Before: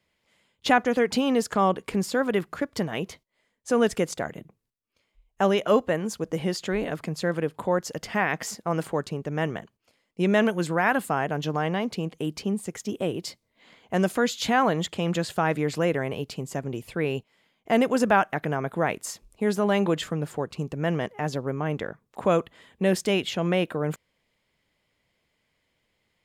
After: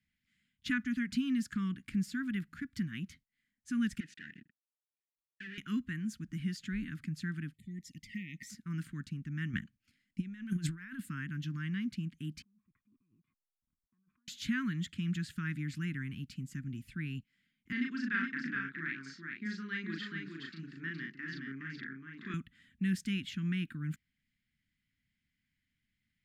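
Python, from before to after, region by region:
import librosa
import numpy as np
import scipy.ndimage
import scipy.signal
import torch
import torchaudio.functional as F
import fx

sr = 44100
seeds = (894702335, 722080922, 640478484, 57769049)

y = fx.chain(x, sr, fx.leveller(passes=5),
    fx.vowel_filter(vowel='e'), at=(4.0, 5.58))
y = fx.chain(y, sr, fx.brickwall_bandstop(low_hz=480.0, high_hz=1800.0),
    fx.low_shelf(hz=380.0, db=-5.5),
    fx.env_flanger(rest_ms=2.3, full_db=-27.5), at=(7.53, 8.5))
y = fx.chain(y, sr, fx.over_compress(threshold_db=-32.0, ratio=-1.0),
    fx.transient(attack_db=8, sustain_db=-3), at=(9.53, 11.0))
y = fx.chain(y, sr, fx.backlash(play_db=-42.0),
    fx.over_compress(threshold_db=-36.0, ratio=-1.0),
    fx.formant_cascade(vowel='a'), at=(12.42, 14.28))
y = fx.chain(y, sr, fx.cabinet(low_hz=350.0, low_slope=12, high_hz=4800.0, hz=(360.0, 530.0, 950.0, 1800.0, 2800.0, 4600.0), db=(7, 5, -4, 4, -4, 6)),
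    fx.doubler(ms=37.0, db=-2.5),
    fx.echo_single(ms=418, db=-4.5), at=(17.72, 22.34))
y = scipy.signal.sosfilt(scipy.signal.ellip(3, 1.0, 60, [250.0, 1600.0], 'bandstop', fs=sr, output='sos'), y)
y = fx.high_shelf(y, sr, hz=2200.0, db=-10.0)
y = y * librosa.db_to_amplitude(-5.0)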